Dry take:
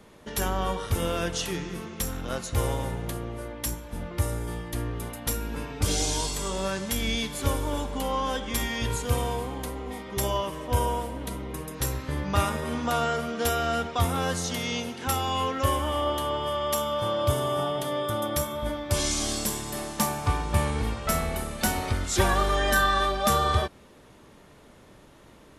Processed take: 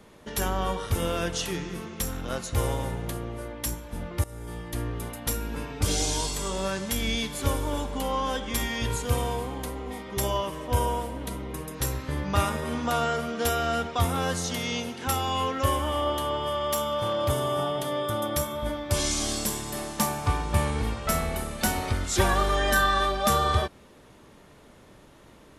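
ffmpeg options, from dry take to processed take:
ffmpeg -i in.wav -filter_complex "[0:a]asettb=1/sr,asplit=3[link_01][link_02][link_03];[link_01]atrim=end=16.574[link_04];[link_02]atrim=start=16.57:end=17.3,asetpts=PTS-STARTPTS,afade=type=in:duration=0.004:curve=qsin,afade=type=out:start_time=0.726:duration=0.004:curve=qsin,asoftclip=type=hard:threshold=-20dB[link_05];[link_03]atrim=start=17.296[link_06];[link_04][link_05]acrossfade=duration=0.004:curve1=hsin:curve2=qsin[link_07];[link_07][link_06]acrossfade=duration=0.004:curve1=qsin:curve2=hsin,asplit=2[link_08][link_09];[link_08]atrim=end=4.24,asetpts=PTS-STARTPTS,afade=type=out:start_time=4.236:duration=0.004:curve=hsin:silence=0.11885[link_10];[link_09]atrim=start=4.24,asetpts=PTS-STARTPTS,afade=type=in:duration=0.67:curve=qsin:silence=0.11885[link_11];[link_10][link_11]concat=n=2:v=0:a=1" out.wav

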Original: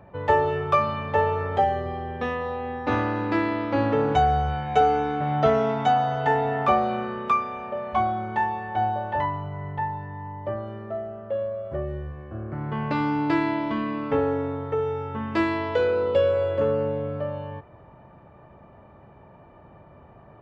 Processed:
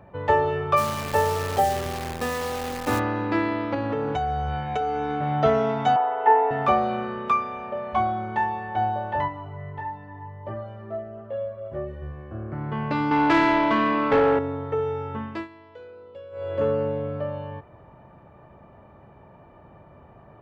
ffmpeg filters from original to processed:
ffmpeg -i in.wav -filter_complex "[0:a]asplit=3[link_01][link_02][link_03];[link_01]afade=type=out:start_time=0.76:duration=0.02[link_04];[link_02]acrusher=bits=6:dc=4:mix=0:aa=0.000001,afade=type=in:start_time=0.76:duration=0.02,afade=type=out:start_time=2.98:duration=0.02[link_05];[link_03]afade=type=in:start_time=2.98:duration=0.02[link_06];[link_04][link_05][link_06]amix=inputs=3:normalize=0,asettb=1/sr,asplit=3[link_07][link_08][link_09];[link_07]atrim=end=3.744[link_10];[link_08]atrim=start=3.74:end=5.23,asetpts=PTS-STARTPTS,afade=type=in:duration=0.004:curve=qsin,afade=type=out:start_time=1.486:duration=0.004:curve=qsin,acompressor=threshold=-22dB:ratio=6:attack=3.2:release=140:knee=1:detection=peak[link_11];[link_09]atrim=start=5.226[link_12];[link_10][link_11]acrossfade=duration=0.004:curve1=hsin:curve2=qsin[link_13];[link_13][link_12]acrossfade=duration=0.004:curve1=qsin:curve2=hsin,asettb=1/sr,asplit=3[link_14][link_15][link_16];[link_14]atrim=end=5.964[link_17];[link_15]atrim=start=5.96:end=6.51,asetpts=PTS-STARTPTS,afade=type=in:duration=0.004:curve=qsin,afade=type=out:start_time=0.546:duration=0.004:curve=qsin,highpass=frequency=370:width=0.5412,highpass=frequency=370:width=1.3066,equalizer=frequency=390:width_type=q:width=4:gain=9,equalizer=frequency=600:width_type=q:width=4:gain=-6,equalizer=frequency=900:width_type=q:width=4:gain=8,equalizer=frequency=1600:width_type=q:width=4:gain=-3,lowpass=frequency=2500:width=0.5412,lowpass=frequency=2500:width=1.3066[link_18];[link_16]atrim=start=6.506[link_19];[link_17][link_18]acrossfade=duration=0.004:curve1=hsin:curve2=qsin[link_20];[link_20][link_19]acrossfade=duration=0.004:curve1=qsin:curve2=hsin,asplit=3[link_21][link_22][link_23];[link_21]afade=type=out:start_time=9.27:duration=0.02[link_24];[link_22]flanger=delay=16.5:depth=2.2:speed=1.4,afade=type=in:start_time=9.27:duration=0.02,afade=type=out:start_time=12.01:duration=0.02[link_25];[link_23]afade=type=in:start_time=12.01:duration=0.02[link_26];[link_24][link_25][link_26]amix=inputs=3:normalize=0,asettb=1/sr,asplit=3[link_27][link_28][link_29];[link_27]atrim=end=13.114[link_30];[link_28]atrim=start=13.11:end=14.39,asetpts=PTS-STARTPTS,afade=type=in:duration=0.004:curve=qsin,afade=type=out:start_time=1.276:duration=0.004:curve=qsin,asplit=2[link_31][link_32];[link_32]highpass=frequency=720:poles=1,volume=19dB,asoftclip=type=tanh:threshold=-10dB[link_33];[link_31][link_33]amix=inputs=2:normalize=0,lowpass=frequency=2700:poles=1,volume=-6dB[link_34];[link_29]atrim=start=14.386[link_35];[link_30][link_34]acrossfade=duration=0.004:curve1=hsin:curve2=qsin[link_36];[link_36][link_35]acrossfade=duration=0.004:curve1=qsin:curve2=hsin,asplit=3[link_37][link_38][link_39];[link_37]atrim=end=15.48,asetpts=PTS-STARTPTS,afade=type=out:start_time=15.15:duration=0.33:silence=0.0841395[link_40];[link_38]atrim=start=15.48:end=16.31,asetpts=PTS-STARTPTS,volume=-21.5dB[link_41];[link_39]atrim=start=16.31,asetpts=PTS-STARTPTS,afade=type=in:duration=0.33:silence=0.0841395[link_42];[link_40][link_41][link_42]concat=n=3:v=0:a=1" out.wav

